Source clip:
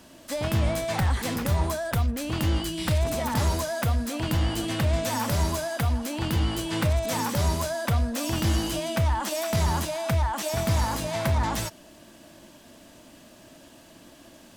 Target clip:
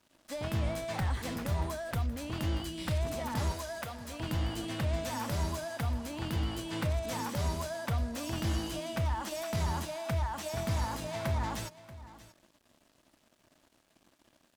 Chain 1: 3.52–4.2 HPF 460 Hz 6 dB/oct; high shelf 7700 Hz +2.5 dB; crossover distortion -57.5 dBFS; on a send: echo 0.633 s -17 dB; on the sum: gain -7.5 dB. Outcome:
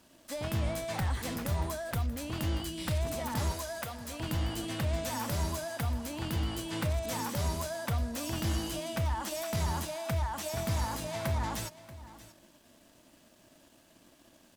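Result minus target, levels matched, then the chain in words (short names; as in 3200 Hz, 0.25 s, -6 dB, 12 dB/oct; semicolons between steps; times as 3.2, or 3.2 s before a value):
crossover distortion: distortion -8 dB; 8000 Hz band +3.0 dB
3.52–4.2 HPF 460 Hz 6 dB/oct; high shelf 7700 Hz -4.5 dB; crossover distortion -49.5 dBFS; on a send: echo 0.633 s -17 dB; on the sum: gain -7.5 dB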